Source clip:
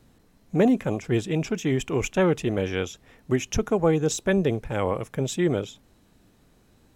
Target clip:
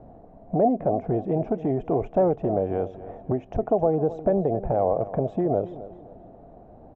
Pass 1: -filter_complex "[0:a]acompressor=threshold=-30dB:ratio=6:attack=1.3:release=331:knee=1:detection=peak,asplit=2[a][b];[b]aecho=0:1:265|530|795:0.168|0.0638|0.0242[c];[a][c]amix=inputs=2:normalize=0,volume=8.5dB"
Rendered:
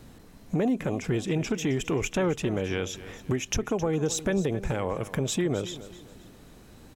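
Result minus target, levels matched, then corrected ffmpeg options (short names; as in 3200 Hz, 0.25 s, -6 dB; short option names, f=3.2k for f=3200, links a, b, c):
500 Hz band -3.0 dB
-filter_complex "[0:a]acompressor=threshold=-30dB:ratio=6:attack=1.3:release=331:knee=1:detection=peak,lowpass=f=690:t=q:w=7.2,asplit=2[a][b];[b]aecho=0:1:265|530|795:0.168|0.0638|0.0242[c];[a][c]amix=inputs=2:normalize=0,volume=8.5dB"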